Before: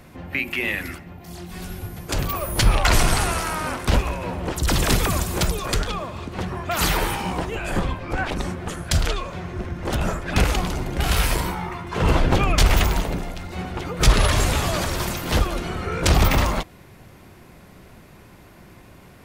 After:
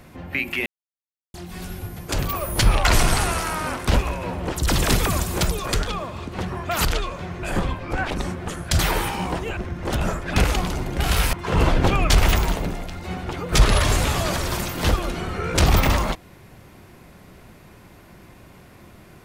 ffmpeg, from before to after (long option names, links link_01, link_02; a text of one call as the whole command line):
ffmpeg -i in.wav -filter_complex "[0:a]asplit=8[link_01][link_02][link_03][link_04][link_05][link_06][link_07][link_08];[link_01]atrim=end=0.66,asetpts=PTS-STARTPTS,afade=type=out:start_time=0.656:duration=0.004:curve=hsin[link_09];[link_02]atrim=start=0.66:end=1.34,asetpts=PTS-STARTPTS,volume=0[link_10];[link_03]atrim=start=1.34:end=6.852,asetpts=PTS-STARTPTS,afade=type=in:duration=0.004:curve=hsin[link_11];[link_04]atrim=start=8.988:end=9.572[link_12];[link_05]atrim=start=7.628:end=8.992[link_13];[link_06]atrim=start=6.848:end=7.632[link_14];[link_07]atrim=start=9.568:end=11.332[link_15];[link_08]atrim=start=11.808[link_16];[link_09][link_10][link_11]concat=n=3:v=0:a=1[link_17];[link_17][link_12]acrossfade=duration=0.004:curve1=hsin:curve2=hsin[link_18];[link_18][link_13]acrossfade=duration=0.004:curve1=hsin:curve2=hsin[link_19];[link_19][link_14]acrossfade=duration=0.004:curve1=hsin:curve2=hsin[link_20];[link_20][link_15]acrossfade=duration=0.004:curve1=hsin:curve2=hsin[link_21];[link_21][link_16]acrossfade=duration=0.004:curve1=hsin:curve2=hsin" out.wav